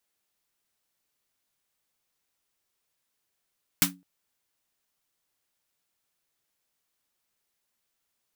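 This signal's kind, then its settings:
synth snare length 0.21 s, tones 180 Hz, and 280 Hz, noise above 730 Hz, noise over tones 10 dB, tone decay 0.31 s, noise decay 0.14 s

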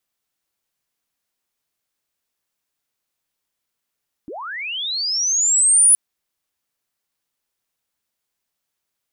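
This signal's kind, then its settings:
glide linear 250 Hz → 10,000 Hz −29.5 dBFS → −8 dBFS 1.67 s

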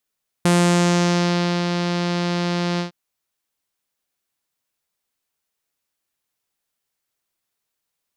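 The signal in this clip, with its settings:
subtractive voice saw F3 12 dB per octave, low-pass 4,800 Hz, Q 2, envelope 1 octave, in 0.92 s, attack 3.2 ms, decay 1.19 s, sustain −7 dB, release 0.12 s, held 2.34 s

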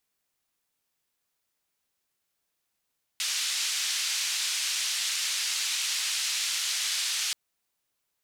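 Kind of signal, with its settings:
band-limited noise 2,500–6,300 Hz, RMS −29.5 dBFS 4.13 s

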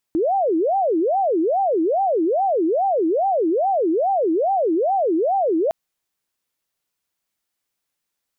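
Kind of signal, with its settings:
siren wail 316–792 Hz 2.4 per second sine −16 dBFS 5.56 s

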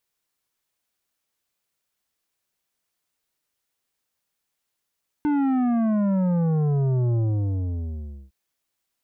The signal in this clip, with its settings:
bass drop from 300 Hz, over 3.06 s, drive 10 dB, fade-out 1.16 s, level −20 dB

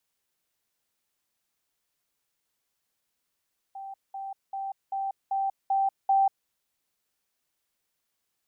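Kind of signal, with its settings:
level staircase 781 Hz −36.5 dBFS, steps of 3 dB, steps 7, 0.19 s 0.20 s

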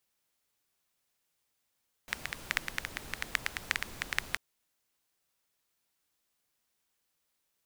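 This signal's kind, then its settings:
rain-like ticks over hiss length 2.29 s, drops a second 9.2, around 1,900 Hz, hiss −8.5 dB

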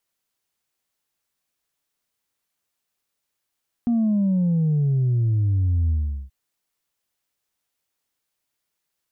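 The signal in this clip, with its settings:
bass drop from 240 Hz, over 2.43 s, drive 1 dB, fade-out 0.40 s, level −17.5 dB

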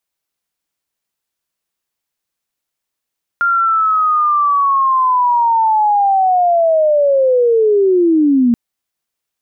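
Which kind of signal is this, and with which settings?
glide linear 1,400 Hz → 230 Hz −10.5 dBFS → −8 dBFS 5.13 s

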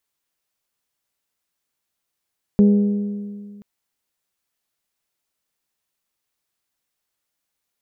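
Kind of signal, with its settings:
struck metal bell, length 1.03 s, lowest mode 204 Hz, decay 2.02 s, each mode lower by 10 dB, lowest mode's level −8.5 dB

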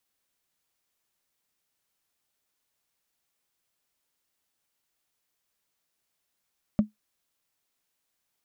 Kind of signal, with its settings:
struck wood, lowest mode 212 Hz, decay 0.14 s, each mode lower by 11 dB, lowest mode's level −13 dB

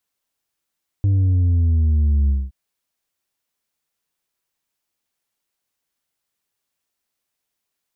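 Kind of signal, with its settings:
bass drop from 100 Hz, over 1.47 s, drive 4 dB, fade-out 0.22 s, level −14 dB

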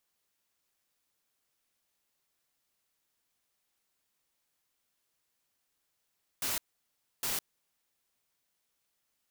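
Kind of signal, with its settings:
noise bursts white, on 0.16 s, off 0.65 s, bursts 2, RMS −33 dBFS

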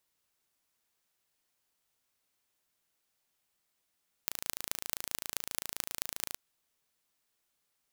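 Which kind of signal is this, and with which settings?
impulse train 27.6 per second, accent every 6, −3.5 dBFS 2.08 s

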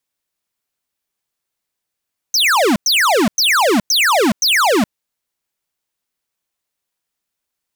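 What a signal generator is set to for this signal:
repeated falling chirps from 6,400 Hz, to 190 Hz, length 0.42 s square, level −13 dB, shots 5, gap 0.10 s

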